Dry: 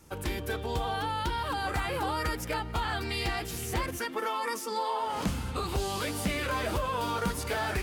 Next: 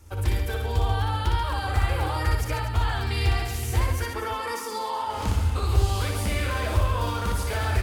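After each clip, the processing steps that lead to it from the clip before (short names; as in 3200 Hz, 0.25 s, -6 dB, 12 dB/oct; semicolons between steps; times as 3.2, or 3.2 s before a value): resonant low shelf 120 Hz +7.5 dB, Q 3; reverse bouncing-ball echo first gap 60 ms, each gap 1.3×, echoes 5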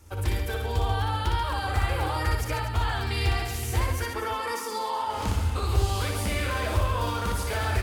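low shelf 110 Hz -4 dB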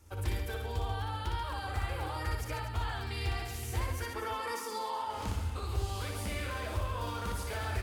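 vocal rider 0.5 s; gain -8.5 dB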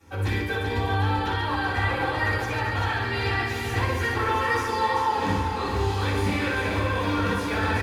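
feedback echo 0.389 s, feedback 58%, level -6.5 dB; reverb RT60 0.45 s, pre-delay 3 ms, DRR -12.5 dB; gain -5 dB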